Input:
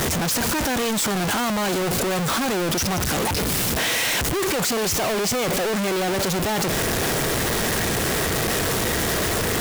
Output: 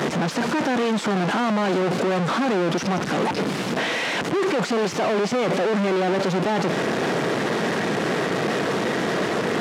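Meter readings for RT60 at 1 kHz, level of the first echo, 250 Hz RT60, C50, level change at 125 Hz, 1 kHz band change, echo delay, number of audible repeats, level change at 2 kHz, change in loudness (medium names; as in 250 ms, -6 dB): no reverb, no echo, no reverb, no reverb, -1.5 dB, +1.5 dB, no echo, no echo, -1.0 dB, -1.0 dB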